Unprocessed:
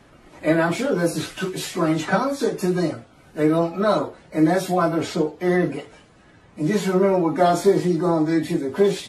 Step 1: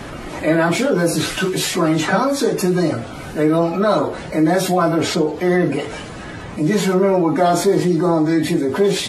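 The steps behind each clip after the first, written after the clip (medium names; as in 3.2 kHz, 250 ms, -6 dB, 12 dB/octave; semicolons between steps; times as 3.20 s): level flattener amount 50%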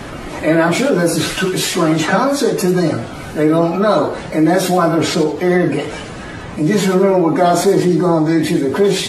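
modulated delay 92 ms, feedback 32%, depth 137 cents, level -13 dB; trim +2.5 dB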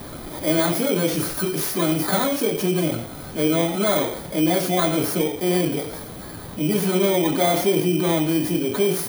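bit-reversed sample order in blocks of 16 samples; trim -7 dB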